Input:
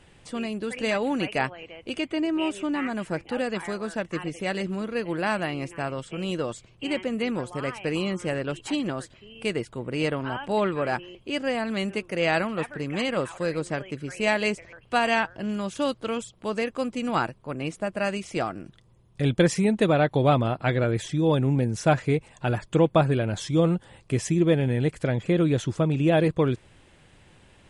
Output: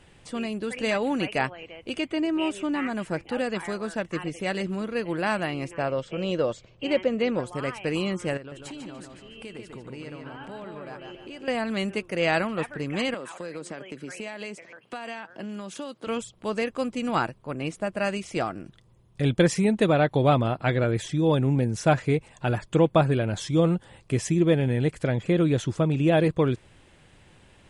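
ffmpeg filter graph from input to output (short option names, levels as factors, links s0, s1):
-filter_complex "[0:a]asettb=1/sr,asplit=3[s0][s1][s2];[s0]atrim=end=5.714[s3];[s1]atrim=start=5.71:end=7.4,asetpts=PTS-STARTPTS,afade=t=in:d=0.004:c=qsin,afade=t=out:st=1.686:d=0.004:c=qsin,lowpass=f=6500:w=0.5412,lowpass=f=6500:w=1.3066,equalizer=f=550:t=o:w=0.49:g=8[s4];[s2]atrim=start=7.396[s5];[s3][s4]acrossfade=d=0.004:c1=hsin:c2=qsin[s6];[s6][s5]acrossfade=d=0.004:c1=qsin:c2=hsin,asettb=1/sr,asplit=3[s7][s8][s9];[s7]atrim=end=8.374[s10];[s8]atrim=start=8.37:end=11.48,asetpts=PTS-STARTPTS,afade=t=in:d=0.004:c=qsin,afade=t=out:st=3.106:d=0.004:c=qsin,acompressor=threshold=0.0126:ratio=5:attack=3.2:release=140:knee=1:detection=peak,asplit=2[s11][s12];[s12]adelay=146,lowpass=f=4900:p=1,volume=0.631,asplit=2[s13][s14];[s14]adelay=146,lowpass=f=4900:p=1,volume=0.46,asplit=2[s15][s16];[s16]adelay=146,lowpass=f=4900:p=1,volume=0.46,asplit=2[s17][s18];[s18]adelay=146,lowpass=f=4900:p=1,volume=0.46,asplit=2[s19][s20];[s20]adelay=146,lowpass=f=4900:p=1,volume=0.46,asplit=2[s21][s22];[s22]adelay=146,lowpass=f=4900:p=1,volume=0.46[s23];[s11][s13][s15][s17][s19][s21][s23]amix=inputs=7:normalize=0,atrim=end_sample=137151[s24];[s9]atrim=start=11.476[s25];[s10][s24]acrossfade=d=0.004:c1=hsin:c2=qsin[s26];[s26][s25]acrossfade=d=0.004:c1=qsin:c2=hsin,asettb=1/sr,asplit=3[s27][s28][s29];[s27]atrim=end=13.144[s30];[s28]atrim=start=13.14:end=16.07,asetpts=PTS-STARTPTS,afade=t=in:d=0.004:c=qsin,afade=t=out:st=2.926:d=0.004:c=qsin,highpass=f=170:w=0.5412,highpass=f=170:w=1.3066,acompressor=threshold=0.0282:ratio=12:attack=3.2:release=140:knee=1:detection=peak[s31];[s29]atrim=start=16.066[s32];[s30][s31]acrossfade=d=0.004:c1=hsin:c2=qsin[s33];[s33][s32]acrossfade=d=0.004:c1=qsin:c2=hsin"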